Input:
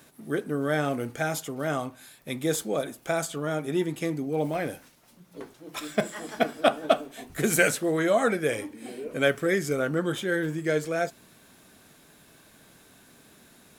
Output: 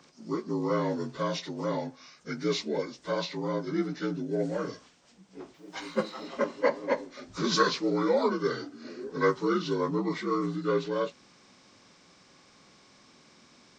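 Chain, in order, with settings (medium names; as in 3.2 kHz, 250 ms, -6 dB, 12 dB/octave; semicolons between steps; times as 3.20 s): frequency axis rescaled in octaves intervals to 81%; 5.54–6.26 s: word length cut 12-bit, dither none; trim -1 dB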